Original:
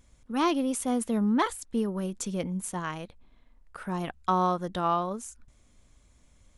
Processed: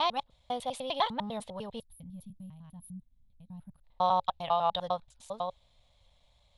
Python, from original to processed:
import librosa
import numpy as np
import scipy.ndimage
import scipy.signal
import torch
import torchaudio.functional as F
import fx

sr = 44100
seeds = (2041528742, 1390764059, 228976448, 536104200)

y = fx.block_reorder(x, sr, ms=100.0, group=5)
y = fx.curve_eq(y, sr, hz=(140.0, 340.0, 550.0, 840.0, 1400.0, 2600.0, 3800.0, 6200.0), db=(0, -16, 7, 10, -4, 5, 15, -7))
y = fx.spec_box(y, sr, start_s=1.8, length_s=2.04, low_hz=290.0, high_hz=9600.0, gain_db=-28)
y = y * 10.0 ** (-6.5 / 20.0)